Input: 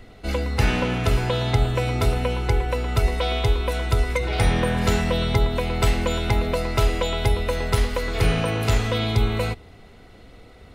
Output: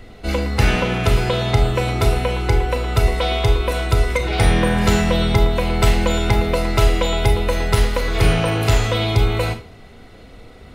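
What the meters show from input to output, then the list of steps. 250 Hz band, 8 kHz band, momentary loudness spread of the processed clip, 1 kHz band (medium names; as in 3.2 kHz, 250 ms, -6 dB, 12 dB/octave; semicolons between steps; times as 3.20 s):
+4.5 dB, +5.0 dB, 3 LU, +4.5 dB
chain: Schroeder reverb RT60 0.33 s, combs from 27 ms, DRR 7 dB; trim +4 dB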